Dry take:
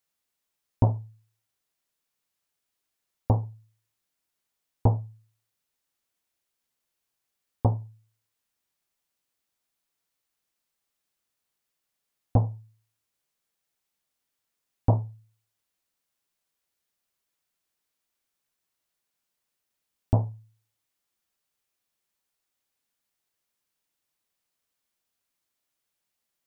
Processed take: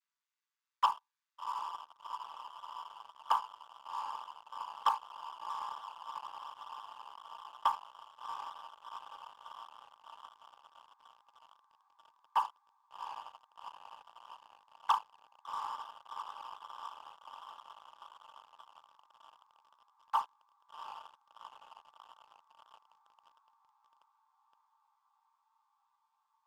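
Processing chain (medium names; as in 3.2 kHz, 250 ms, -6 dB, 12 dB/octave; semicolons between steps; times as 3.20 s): vocoder on a held chord minor triad, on A2; steep high-pass 900 Hz 96 dB/octave; echo that smears into a reverb 745 ms, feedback 79%, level -10 dB; waveshaping leveller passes 3; trim +16 dB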